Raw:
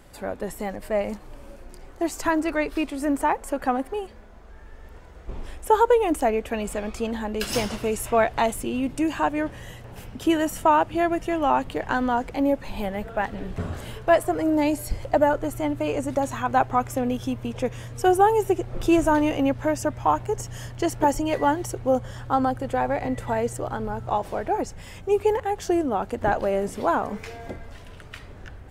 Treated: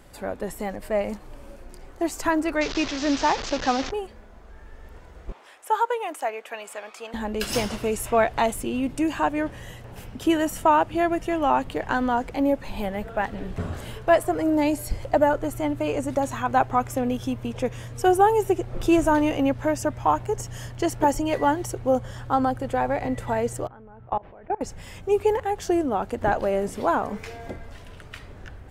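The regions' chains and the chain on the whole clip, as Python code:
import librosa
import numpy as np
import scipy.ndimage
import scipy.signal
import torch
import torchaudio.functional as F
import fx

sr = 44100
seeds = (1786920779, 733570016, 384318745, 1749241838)

y = fx.chain(x, sr, fx.delta_mod(bps=32000, step_db=-27.0),
    fx.high_shelf(hz=2800.0, db=7.5), at=(2.61, 3.91))
y = fx.chain(y, sr, fx.highpass(hz=810.0, slope=12),
    fx.high_shelf(hz=3400.0, db=-5.5), at=(5.32, 7.14))
y = fx.chain(y, sr, fx.lowpass(hz=2600.0, slope=24),
    fx.level_steps(step_db=23), at=(23.67, 24.61))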